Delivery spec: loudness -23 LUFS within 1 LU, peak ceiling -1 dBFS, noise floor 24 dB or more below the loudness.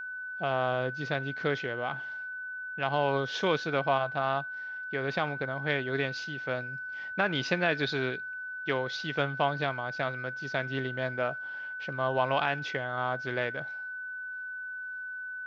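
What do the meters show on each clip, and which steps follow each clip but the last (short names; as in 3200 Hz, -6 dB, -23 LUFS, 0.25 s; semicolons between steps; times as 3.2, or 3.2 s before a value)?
steady tone 1500 Hz; tone level -36 dBFS; loudness -31.5 LUFS; peak -11.5 dBFS; loudness target -23.0 LUFS
-> notch 1500 Hz, Q 30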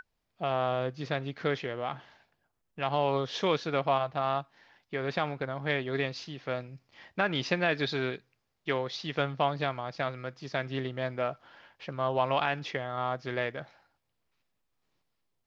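steady tone none; loudness -32.0 LUFS; peak -12.5 dBFS; loudness target -23.0 LUFS
-> gain +9 dB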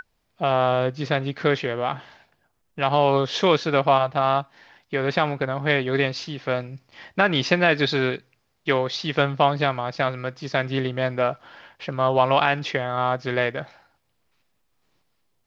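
loudness -23.0 LUFS; peak -3.5 dBFS; noise floor -71 dBFS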